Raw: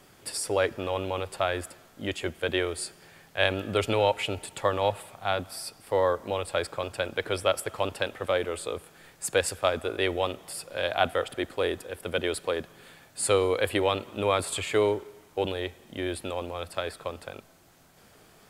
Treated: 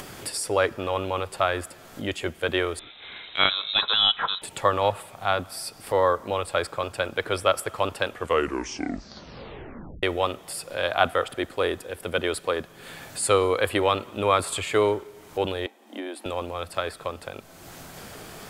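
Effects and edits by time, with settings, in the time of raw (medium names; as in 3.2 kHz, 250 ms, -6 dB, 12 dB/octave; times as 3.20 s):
2.79–4.42 s: frequency inversion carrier 3.9 kHz
8.08 s: tape stop 1.95 s
15.66–16.26 s: rippled Chebyshev high-pass 210 Hz, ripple 9 dB
whole clip: dynamic bell 1.2 kHz, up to +6 dB, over -42 dBFS, Q 2.3; upward compressor, threshold -31 dBFS; trim +2 dB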